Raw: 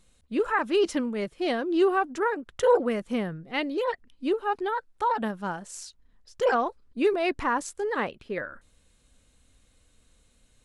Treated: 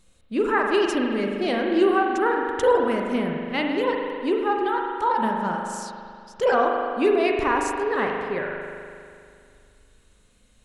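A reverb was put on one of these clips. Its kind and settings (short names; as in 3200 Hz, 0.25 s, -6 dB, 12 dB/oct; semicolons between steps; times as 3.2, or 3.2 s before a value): spring tank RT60 2.3 s, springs 40 ms, chirp 70 ms, DRR 0.5 dB; gain +2 dB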